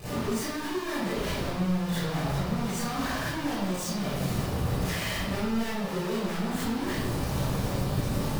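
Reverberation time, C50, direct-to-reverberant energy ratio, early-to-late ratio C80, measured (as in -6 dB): 1.0 s, -6.5 dB, -14.5 dB, -1.0 dB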